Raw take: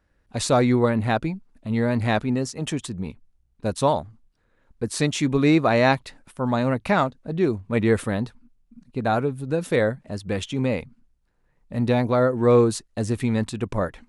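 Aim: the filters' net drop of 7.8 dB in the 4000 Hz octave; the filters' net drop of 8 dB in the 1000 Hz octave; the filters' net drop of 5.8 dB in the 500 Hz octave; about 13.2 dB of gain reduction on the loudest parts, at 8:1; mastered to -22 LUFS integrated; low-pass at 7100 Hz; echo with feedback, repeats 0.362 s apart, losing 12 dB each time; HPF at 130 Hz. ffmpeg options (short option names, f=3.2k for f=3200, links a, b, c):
-af "highpass=130,lowpass=7.1k,equalizer=f=500:t=o:g=-4.5,equalizer=f=1k:t=o:g=-9,equalizer=f=4k:t=o:g=-8.5,acompressor=threshold=-31dB:ratio=8,aecho=1:1:362|724|1086:0.251|0.0628|0.0157,volume=14.5dB"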